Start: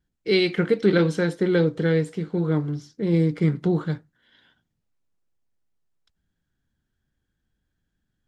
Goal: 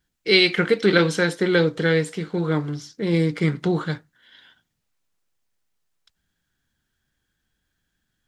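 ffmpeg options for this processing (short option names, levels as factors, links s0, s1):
-af "tiltshelf=f=730:g=-5.5,volume=1.58"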